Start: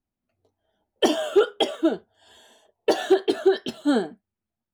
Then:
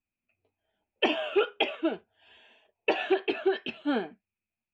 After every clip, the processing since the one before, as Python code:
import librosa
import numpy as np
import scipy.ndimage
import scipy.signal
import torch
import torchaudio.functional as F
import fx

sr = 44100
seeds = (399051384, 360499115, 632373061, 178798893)

y = fx.dynamic_eq(x, sr, hz=910.0, q=1.8, threshold_db=-36.0, ratio=4.0, max_db=4)
y = fx.lowpass_res(y, sr, hz=2500.0, q=13.0)
y = y * librosa.db_to_amplitude(-8.0)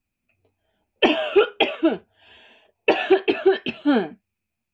y = fx.low_shelf(x, sr, hz=250.0, db=7.0)
y = y * librosa.db_to_amplitude(7.0)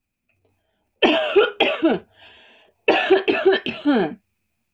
y = fx.transient(x, sr, attack_db=1, sustain_db=8)